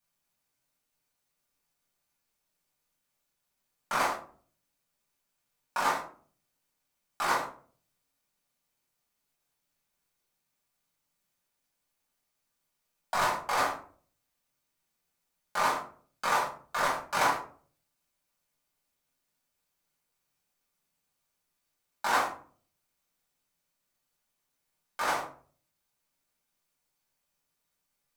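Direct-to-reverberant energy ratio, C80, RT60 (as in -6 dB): -6.5 dB, 12.5 dB, 0.45 s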